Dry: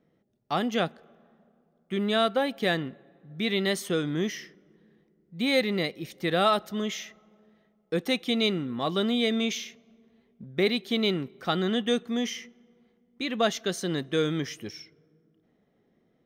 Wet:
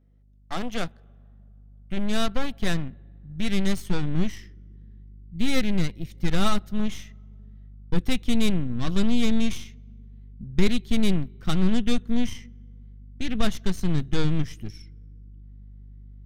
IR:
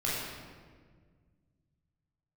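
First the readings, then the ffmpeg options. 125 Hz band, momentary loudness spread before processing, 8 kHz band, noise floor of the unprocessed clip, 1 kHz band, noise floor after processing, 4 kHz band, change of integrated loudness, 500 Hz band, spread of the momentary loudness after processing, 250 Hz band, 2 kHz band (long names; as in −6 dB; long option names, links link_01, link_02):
+7.5 dB, 11 LU, +0.5 dB, −69 dBFS, −4.5 dB, −50 dBFS, −3.5 dB, 0.0 dB, −6.0 dB, 18 LU, +3.5 dB, −3.5 dB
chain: -af "aeval=exprs='val(0)+0.00224*(sin(2*PI*50*n/s)+sin(2*PI*2*50*n/s)/2+sin(2*PI*3*50*n/s)/3+sin(2*PI*4*50*n/s)/4+sin(2*PI*5*50*n/s)/5)':channel_layout=same,aeval=exprs='0.266*(cos(1*acos(clip(val(0)/0.266,-1,1)))-cos(1*PI/2))+0.0473*(cos(3*acos(clip(val(0)/0.266,-1,1)))-cos(3*PI/2))+0.0237*(cos(8*acos(clip(val(0)/0.266,-1,1)))-cos(8*PI/2))':channel_layout=same,asubboost=boost=8:cutoff=190"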